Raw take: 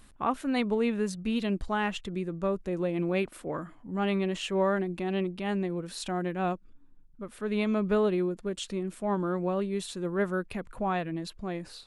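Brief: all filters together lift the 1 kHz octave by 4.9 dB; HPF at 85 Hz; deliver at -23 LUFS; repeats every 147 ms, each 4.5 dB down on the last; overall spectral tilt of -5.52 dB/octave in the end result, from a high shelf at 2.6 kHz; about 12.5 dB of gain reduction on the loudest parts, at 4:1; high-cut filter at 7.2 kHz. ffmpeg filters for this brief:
-af "highpass=85,lowpass=7200,equalizer=f=1000:t=o:g=7.5,highshelf=f=2600:g=-7,acompressor=threshold=0.02:ratio=4,aecho=1:1:147|294|441|588|735|882|1029|1176|1323:0.596|0.357|0.214|0.129|0.0772|0.0463|0.0278|0.0167|0.01,volume=4.22"

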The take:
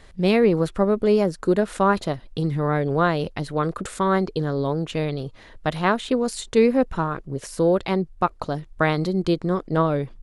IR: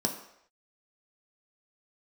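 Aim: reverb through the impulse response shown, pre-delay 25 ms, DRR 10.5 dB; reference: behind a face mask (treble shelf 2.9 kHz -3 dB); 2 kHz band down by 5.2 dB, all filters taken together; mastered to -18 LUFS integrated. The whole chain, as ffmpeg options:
-filter_complex "[0:a]equalizer=f=2000:t=o:g=-6,asplit=2[s0][s1];[1:a]atrim=start_sample=2205,adelay=25[s2];[s1][s2]afir=irnorm=-1:irlink=0,volume=0.141[s3];[s0][s3]amix=inputs=2:normalize=0,highshelf=f=2900:g=-3,volume=1.58"

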